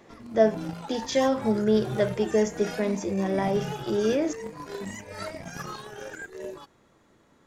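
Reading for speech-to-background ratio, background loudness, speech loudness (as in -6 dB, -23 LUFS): 11.0 dB, -37.0 LUFS, -26.0 LUFS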